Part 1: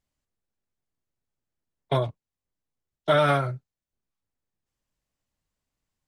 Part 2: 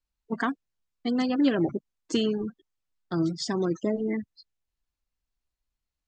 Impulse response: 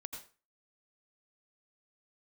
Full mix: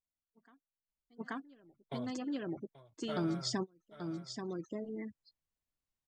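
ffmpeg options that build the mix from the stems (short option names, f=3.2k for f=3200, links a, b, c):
-filter_complex "[0:a]volume=-12dB,afade=t=in:st=3.3:d=0.34:silence=0.473151,asplit=3[a][b][c];[b]volume=-17.5dB[d];[1:a]adelay=50,volume=1dB,asplit=2[e][f];[f]volume=-14dB[g];[c]apad=whole_len=270323[h];[e][h]sidechaingate=range=-39dB:threshold=-55dB:ratio=16:detection=peak[i];[d][g]amix=inputs=2:normalize=0,aecho=0:1:832:1[j];[a][i][j]amix=inputs=3:normalize=0,acompressor=threshold=-35dB:ratio=2.5"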